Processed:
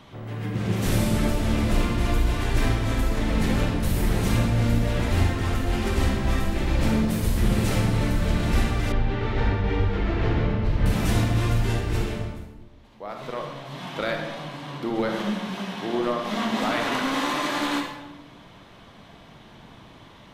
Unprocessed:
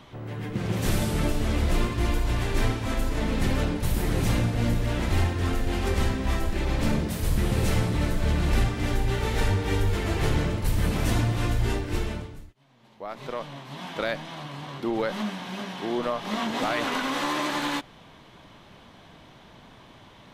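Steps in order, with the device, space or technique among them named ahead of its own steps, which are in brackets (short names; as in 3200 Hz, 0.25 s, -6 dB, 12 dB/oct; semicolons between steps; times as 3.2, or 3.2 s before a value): bathroom (reverb RT60 1.1 s, pre-delay 38 ms, DRR 2.5 dB); 8.92–10.86 air absorption 240 m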